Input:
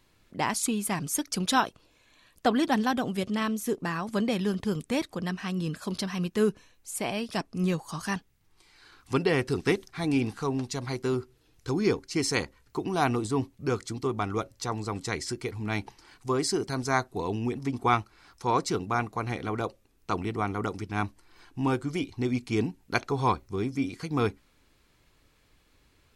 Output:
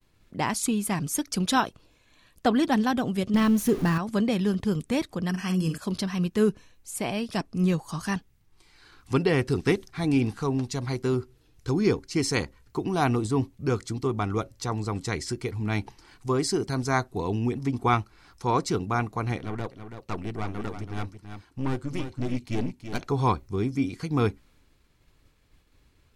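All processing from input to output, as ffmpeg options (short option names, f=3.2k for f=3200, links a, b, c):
-filter_complex "[0:a]asettb=1/sr,asplit=3[a][b][c];[a]atrim=end=3.344[d];[b]atrim=start=3.34:end=3.98,asetpts=PTS-STARTPTS,afade=t=in:d=0.004:c=qsin,afade=t=out:st=0.636:d=0.004:c=qsin,aeval=exprs='val(0)+0.5*0.0188*sgn(val(0))':c=same,lowshelf=f=240:g=7.5,bandreject=f=7.8k:w=14[e];[c]atrim=start=3.976[f];[d][e]acrossfade=d=0.004:c1=hsin:c2=qsin[g];[g][f]acrossfade=d=0.004:c1=qsin:c2=hsin,asettb=1/sr,asplit=3[h][i][j];[h]atrim=end=5.294[k];[i]atrim=start=5.29:end=5.78,asetpts=PTS-STARTPTS,afade=t=in:d=0.004:c=qsin,afade=t=out:st=0.486:d=0.004:c=qsin,asuperstop=centerf=3800:order=20:qfactor=5.2,highshelf=f=5.4k:g=11.5,asplit=2[l][m];[m]adelay=49,volume=-9dB[n];[l][n]amix=inputs=2:normalize=0,atrim=end_sample=21609[o];[j]atrim=start=5.776[p];[k][o]acrossfade=d=0.004:c1=hsin:c2=qsin[q];[q][p]acrossfade=d=0.004:c1=qsin:c2=hsin,asettb=1/sr,asplit=3[r][s][t];[r]atrim=end=19.384[u];[s]atrim=start=19.38:end=23.01,asetpts=PTS-STARTPTS,afade=t=in:d=0.004:c=qsin,afade=t=out:st=3.626:d=0.004:c=qsin,highpass=45,aeval=exprs='(tanh(20*val(0)+0.75)-tanh(0.75))/20':c=same,aecho=1:1:330:0.355,atrim=end_sample=160083[v];[t]atrim=start=23.006[w];[u][v]acrossfade=d=0.004:c1=hsin:c2=qsin[x];[x][w]acrossfade=d=0.004:c1=qsin:c2=hsin,agate=range=-33dB:threshold=-60dB:ratio=3:detection=peak,lowshelf=f=230:g=6.5"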